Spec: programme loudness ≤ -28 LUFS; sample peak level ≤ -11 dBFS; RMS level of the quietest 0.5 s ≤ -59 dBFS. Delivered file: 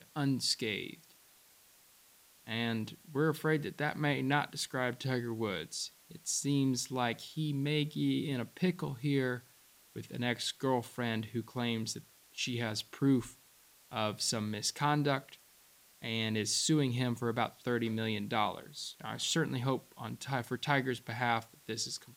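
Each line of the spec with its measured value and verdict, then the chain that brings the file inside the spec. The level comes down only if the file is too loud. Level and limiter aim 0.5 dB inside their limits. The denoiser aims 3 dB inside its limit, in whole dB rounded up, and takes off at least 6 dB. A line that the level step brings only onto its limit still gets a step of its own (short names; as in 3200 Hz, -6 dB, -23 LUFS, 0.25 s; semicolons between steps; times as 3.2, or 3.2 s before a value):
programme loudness -34.5 LUFS: OK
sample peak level -14.0 dBFS: OK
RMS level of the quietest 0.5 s -63 dBFS: OK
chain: none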